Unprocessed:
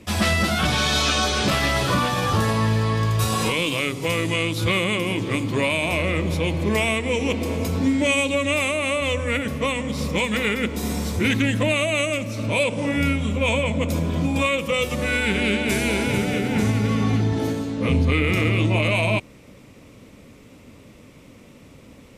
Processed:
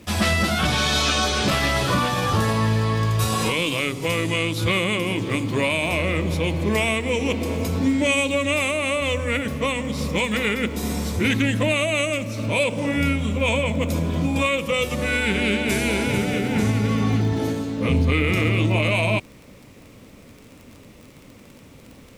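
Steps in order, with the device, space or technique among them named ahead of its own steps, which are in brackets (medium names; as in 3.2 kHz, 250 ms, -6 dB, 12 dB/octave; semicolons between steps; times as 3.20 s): vinyl LP (crackle 34 per s -34 dBFS; pink noise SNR 35 dB)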